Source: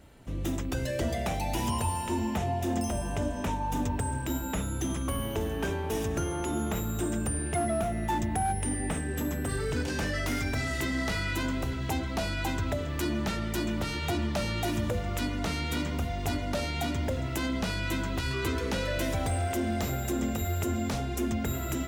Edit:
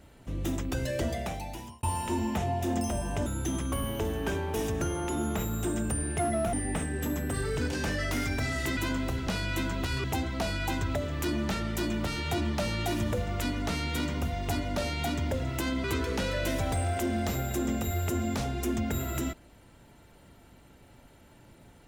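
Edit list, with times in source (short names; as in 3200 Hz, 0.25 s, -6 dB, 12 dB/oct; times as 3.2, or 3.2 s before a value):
0.99–1.83 fade out
3.26–4.62 cut
7.89–8.68 cut
10.92–11.31 cut
17.61–18.38 move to 11.81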